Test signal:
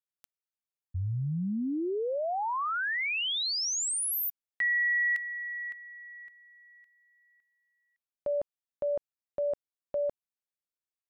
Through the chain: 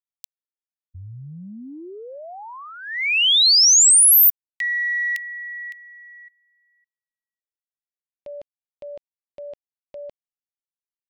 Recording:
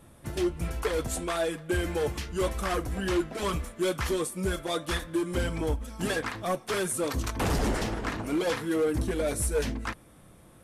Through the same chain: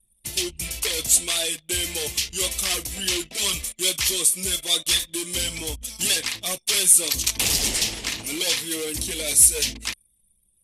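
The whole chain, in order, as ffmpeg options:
ffmpeg -i in.wav -af "aexciter=amount=10.6:drive=5.5:freq=2200,anlmdn=6.31,volume=-5.5dB" out.wav

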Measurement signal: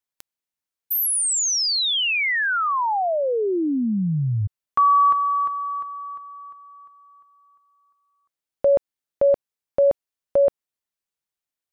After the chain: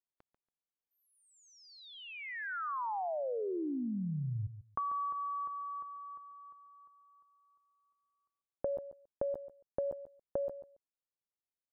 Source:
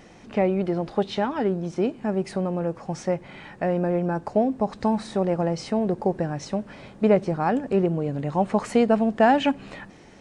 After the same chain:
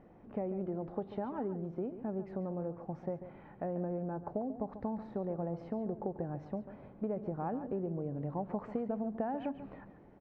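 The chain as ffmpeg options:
ffmpeg -i in.wav -af "lowpass=1000,acompressor=threshold=-28dB:ratio=6:attack=58:release=81:knee=6:detection=rms,aecho=1:1:141|282:0.251|0.0402,volume=-8.5dB" out.wav

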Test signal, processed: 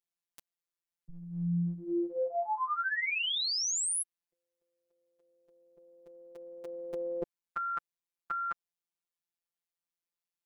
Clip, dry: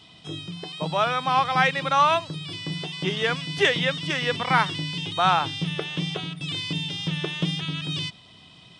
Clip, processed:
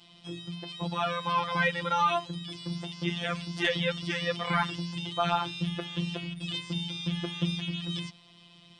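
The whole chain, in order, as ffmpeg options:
ffmpeg -i in.wav -af "afftfilt=real='hypot(re,im)*cos(PI*b)':imag='0':win_size=1024:overlap=0.75,acontrast=77,volume=-9dB" out.wav

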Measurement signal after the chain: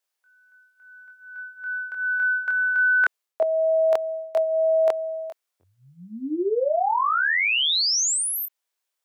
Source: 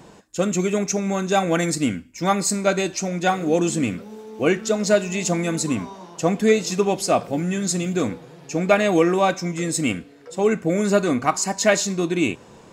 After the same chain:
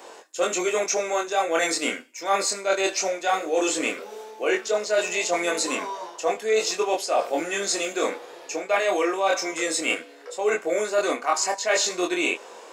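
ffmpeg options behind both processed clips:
ffmpeg -i in.wav -filter_complex "[0:a]acrossover=split=6200[link_01][link_02];[link_02]acompressor=threshold=-36dB:ratio=4:attack=1:release=60[link_03];[link_01][link_03]amix=inputs=2:normalize=0,flanger=delay=22.5:depth=3.4:speed=0.17,highpass=frequency=420:width=0.5412,highpass=frequency=420:width=1.3066,areverse,acompressor=threshold=-29dB:ratio=5,areverse,volume=9dB" out.wav

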